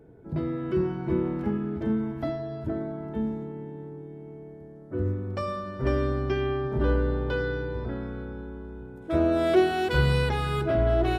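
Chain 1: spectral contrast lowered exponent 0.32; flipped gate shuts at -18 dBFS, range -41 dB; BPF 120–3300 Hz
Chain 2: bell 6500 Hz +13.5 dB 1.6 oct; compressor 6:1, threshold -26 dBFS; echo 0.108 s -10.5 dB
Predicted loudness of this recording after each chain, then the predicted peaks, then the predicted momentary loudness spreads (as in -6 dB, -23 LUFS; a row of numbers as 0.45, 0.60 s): -38.0, -32.0 LUFS; -17.5, -17.0 dBFS; 9, 11 LU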